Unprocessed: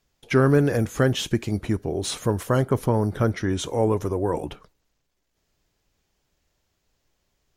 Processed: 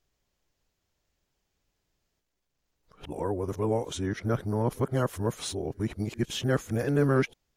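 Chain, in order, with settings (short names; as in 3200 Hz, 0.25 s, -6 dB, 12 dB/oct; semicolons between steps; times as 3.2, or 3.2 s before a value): whole clip reversed; gain -6 dB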